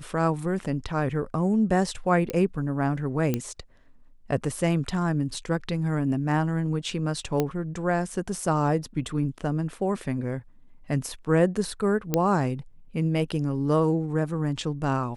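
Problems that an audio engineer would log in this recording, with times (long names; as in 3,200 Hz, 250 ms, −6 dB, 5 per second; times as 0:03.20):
0:02.30: click −15 dBFS
0:03.34: click −12 dBFS
0:07.40: click −11 dBFS
0:12.14: click −8 dBFS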